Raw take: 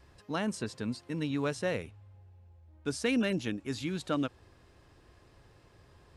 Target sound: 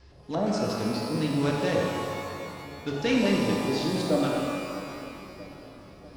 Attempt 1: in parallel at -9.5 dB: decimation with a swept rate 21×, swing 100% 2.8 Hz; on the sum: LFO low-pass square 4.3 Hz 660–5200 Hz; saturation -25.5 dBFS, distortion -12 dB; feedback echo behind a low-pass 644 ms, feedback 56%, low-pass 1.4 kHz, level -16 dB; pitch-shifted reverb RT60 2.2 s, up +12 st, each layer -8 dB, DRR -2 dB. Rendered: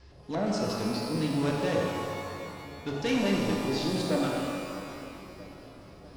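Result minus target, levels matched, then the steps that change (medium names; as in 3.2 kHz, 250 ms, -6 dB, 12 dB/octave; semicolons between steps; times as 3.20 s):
saturation: distortion +13 dB
change: saturation -15.5 dBFS, distortion -25 dB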